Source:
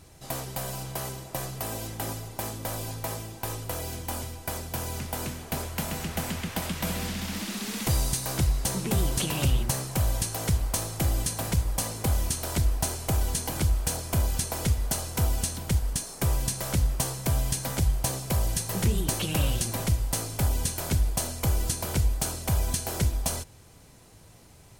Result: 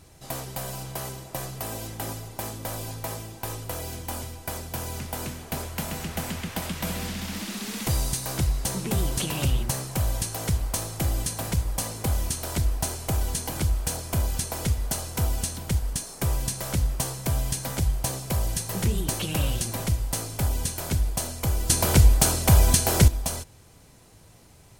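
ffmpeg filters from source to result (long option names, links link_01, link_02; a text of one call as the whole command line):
ffmpeg -i in.wav -filter_complex "[0:a]asplit=3[link_01][link_02][link_03];[link_01]atrim=end=21.702[link_04];[link_02]atrim=start=21.698:end=23.082,asetpts=PTS-STARTPTS,volume=9dB[link_05];[link_03]atrim=start=23.078[link_06];[link_04][link_05]acrossfade=duration=0.004:curve1=hsin:curve2=hsin[link_07];[link_07][link_06]acrossfade=duration=0.004:curve1=hsin:curve2=hsin" out.wav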